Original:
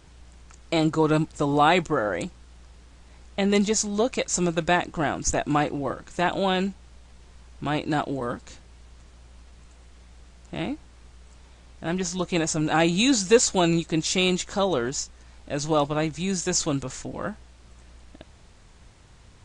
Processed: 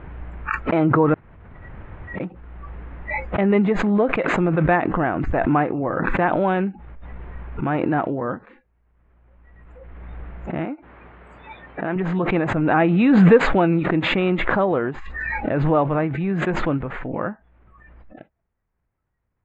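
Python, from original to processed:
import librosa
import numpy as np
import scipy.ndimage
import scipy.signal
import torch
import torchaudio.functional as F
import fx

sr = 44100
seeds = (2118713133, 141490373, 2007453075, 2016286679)

y = fx.highpass(x, sr, hz=300.0, slope=6, at=(10.65, 11.96))
y = fx.edit(y, sr, fx.room_tone_fill(start_s=1.14, length_s=1.06), tone=tone)
y = fx.noise_reduce_blind(y, sr, reduce_db=29)
y = scipy.signal.sosfilt(scipy.signal.cheby2(4, 50, 5200.0, 'lowpass', fs=sr, output='sos'), y)
y = fx.pre_swell(y, sr, db_per_s=22.0)
y = F.gain(torch.from_numpy(y), 3.5).numpy()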